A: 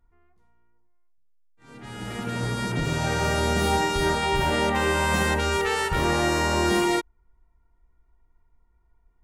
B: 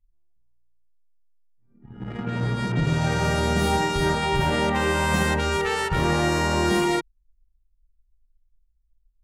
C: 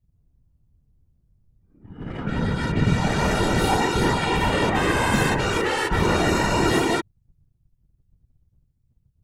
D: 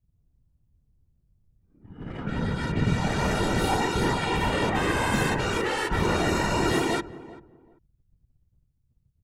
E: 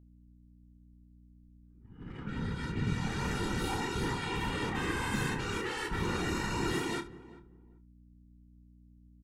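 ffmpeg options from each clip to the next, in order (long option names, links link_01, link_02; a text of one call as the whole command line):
ffmpeg -i in.wav -af "anlmdn=15.8,equalizer=frequency=150:width=1.9:gain=6.5" out.wav
ffmpeg -i in.wav -af "afftfilt=real='hypot(re,im)*cos(2*PI*random(0))':imag='hypot(re,im)*sin(2*PI*random(1))':win_size=512:overlap=0.75,volume=7.5dB" out.wav
ffmpeg -i in.wav -filter_complex "[0:a]asplit=2[link_01][link_02];[link_02]adelay=388,lowpass=frequency=840:poles=1,volume=-16dB,asplit=2[link_03][link_04];[link_04]adelay=388,lowpass=frequency=840:poles=1,volume=0.24[link_05];[link_01][link_03][link_05]amix=inputs=3:normalize=0,volume=-4dB" out.wav
ffmpeg -i in.wav -af "equalizer=frequency=630:width=3.3:gain=-15,aeval=exprs='val(0)+0.00398*(sin(2*PI*60*n/s)+sin(2*PI*2*60*n/s)/2+sin(2*PI*3*60*n/s)/3+sin(2*PI*4*60*n/s)/4+sin(2*PI*5*60*n/s)/5)':channel_layout=same,aecho=1:1:29|73:0.335|0.133,volume=-8dB" out.wav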